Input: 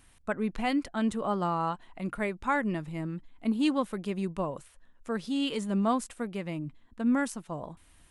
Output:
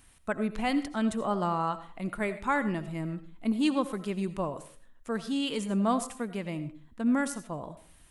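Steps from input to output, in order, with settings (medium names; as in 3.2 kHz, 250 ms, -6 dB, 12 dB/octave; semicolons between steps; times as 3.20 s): treble shelf 7.9 kHz +5 dB; on a send: reverberation RT60 0.40 s, pre-delay 45 ms, DRR 12 dB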